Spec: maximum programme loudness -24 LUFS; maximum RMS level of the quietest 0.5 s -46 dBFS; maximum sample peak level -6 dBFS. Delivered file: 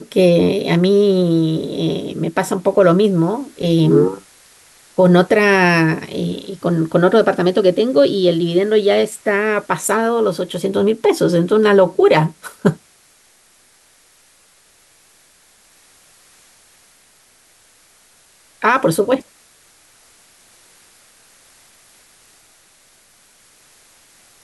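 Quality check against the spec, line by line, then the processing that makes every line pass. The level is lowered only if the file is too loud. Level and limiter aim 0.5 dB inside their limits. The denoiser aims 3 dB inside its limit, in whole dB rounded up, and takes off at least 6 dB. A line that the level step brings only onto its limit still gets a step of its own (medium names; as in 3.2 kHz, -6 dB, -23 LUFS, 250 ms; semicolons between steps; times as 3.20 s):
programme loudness -15.5 LUFS: fail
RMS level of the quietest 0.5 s -53 dBFS: pass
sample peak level -2.0 dBFS: fail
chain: trim -9 dB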